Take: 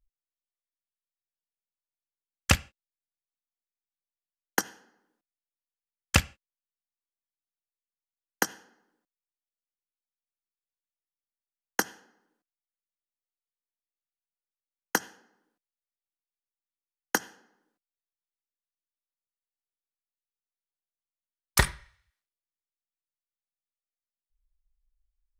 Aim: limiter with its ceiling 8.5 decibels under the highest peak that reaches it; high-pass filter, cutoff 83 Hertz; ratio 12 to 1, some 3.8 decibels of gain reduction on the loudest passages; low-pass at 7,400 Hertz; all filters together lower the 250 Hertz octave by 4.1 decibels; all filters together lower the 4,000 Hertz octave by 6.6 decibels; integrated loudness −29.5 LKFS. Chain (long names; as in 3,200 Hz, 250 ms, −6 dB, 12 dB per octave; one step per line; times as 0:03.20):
high-pass filter 83 Hz
low-pass filter 7,400 Hz
parametric band 250 Hz −5.5 dB
parametric band 4,000 Hz −9 dB
downward compressor 12 to 1, threshold −25 dBFS
level +13 dB
brickwall limiter −5 dBFS